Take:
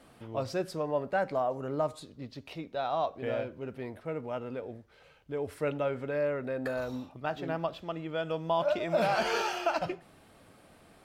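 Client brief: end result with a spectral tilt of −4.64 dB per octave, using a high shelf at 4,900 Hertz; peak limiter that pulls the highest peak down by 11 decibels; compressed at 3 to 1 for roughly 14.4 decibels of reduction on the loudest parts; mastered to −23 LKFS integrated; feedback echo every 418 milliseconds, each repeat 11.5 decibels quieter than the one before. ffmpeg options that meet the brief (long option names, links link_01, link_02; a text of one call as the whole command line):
ffmpeg -i in.wav -af "highshelf=frequency=4900:gain=3.5,acompressor=threshold=-44dB:ratio=3,alimiter=level_in=16dB:limit=-24dB:level=0:latency=1,volume=-16dB,aecho=1:1:418|836|1254:0.266|0.0718|0.0194,volume=26dB" out.wav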